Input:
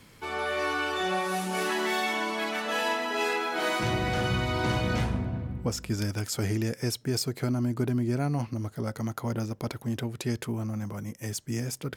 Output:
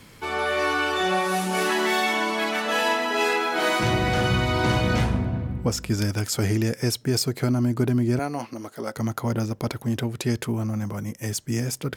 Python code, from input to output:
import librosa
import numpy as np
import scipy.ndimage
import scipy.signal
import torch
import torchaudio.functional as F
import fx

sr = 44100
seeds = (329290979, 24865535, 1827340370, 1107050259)

y = fx.highpass(x, sr, hz=330.0, slope=12, at=(8.19, 8.97))
y = F.gain(torch.from_numpy(y), 5.5).numpy()